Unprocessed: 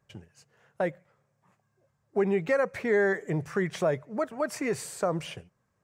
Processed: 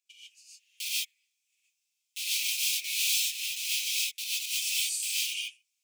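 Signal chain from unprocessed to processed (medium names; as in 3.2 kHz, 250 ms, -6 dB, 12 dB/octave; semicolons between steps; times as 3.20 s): integer overflow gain 28.5 dB; Chebyshev high-pass 2.4 kHz, order 6; gated-style reverb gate 170 ms rising, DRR -7.5 dB; buffer glitch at 1.55/3.00 s, samples 2048, times 1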